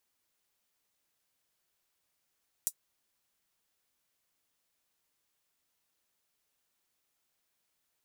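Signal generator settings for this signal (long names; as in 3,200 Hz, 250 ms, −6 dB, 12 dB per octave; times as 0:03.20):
closed synth hi-hat, high-pass 7,500 Hz, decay 0.07 s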